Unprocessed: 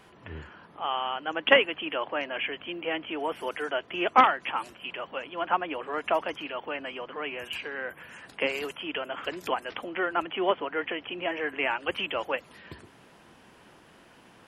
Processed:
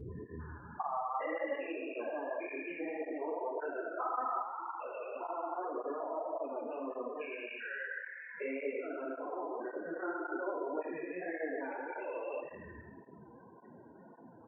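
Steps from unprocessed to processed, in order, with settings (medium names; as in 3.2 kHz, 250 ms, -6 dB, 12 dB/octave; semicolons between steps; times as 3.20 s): spectrogram pixelated in time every 400 ms; 7.47–8.34 s: peaking EQ 340 Hz -10.5 dB 2.3 oct; delay 167 ms -20 dB; compression 2.5:1, threshold -41 dBFS, peak gain reduction 11.5 dB; steep low-pass 2.6 kHz 36 dB/octave; hum notches 50/100/150/200/250/300/350 Hz; loudest bins only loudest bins 16; Schroeder reverb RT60 0.93 s, combs from 26 ms, DRR 3 dB; cancelling through-zero flanger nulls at 1.8 Hz, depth 5.7 ms; trim +7 dB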